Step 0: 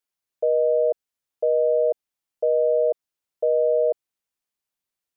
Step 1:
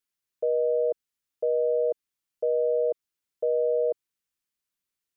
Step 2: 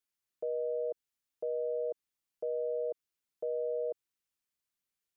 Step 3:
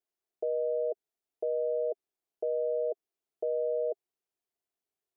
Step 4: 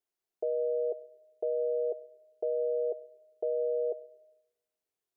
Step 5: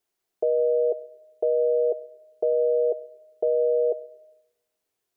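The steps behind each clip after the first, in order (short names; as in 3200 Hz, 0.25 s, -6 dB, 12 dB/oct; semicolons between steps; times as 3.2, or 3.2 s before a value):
bell 710 Hz -8 dB 0.89 oct
limiter -25 dBFS, peak gain reduction 7 dB; gain -3 dB
small resonant body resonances 400/670 Hz, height 16 dB, ringing for 25 ms; gain -6.5 dB
reverb RT60 1.0 s, pre-delay 20 ms, DRR 18.5 dB
gain +8.5 dB; AAC 160 kbps 44100 Hz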